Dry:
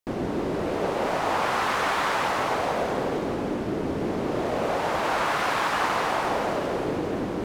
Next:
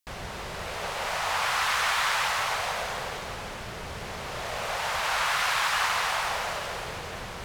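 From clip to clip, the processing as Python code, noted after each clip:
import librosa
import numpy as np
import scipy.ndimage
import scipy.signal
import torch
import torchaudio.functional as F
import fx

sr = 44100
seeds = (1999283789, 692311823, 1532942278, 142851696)

y = fx.tone_stack(x, sr, knobs='10-0-10')
y = y * librosa.db_to_amplitude(6.5)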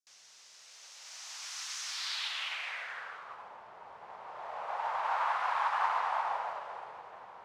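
y = fx.filter_sweep_bandpass(x, sr, from_hz=6000.0, to_hz=900.0, start_s=1.84, end_s=3.52, q=2.7)
y = fx.upward_expand(y, sr, threshold_db=-46.0, expansion=1.5)
y = y * librosa.db_to_amplitude(2.5)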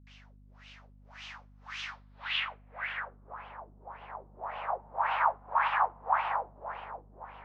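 y = fx.filter_lfo_lowpass(x, sr, shape='sine', hz=1.8, low_hz=220.0, high_hz=3000.0, q=4.3)
y = fx.add_hum(y, sr, base_hz=50, snr_db=21)
y = y * librosa.db_to_amplitude(-1.0)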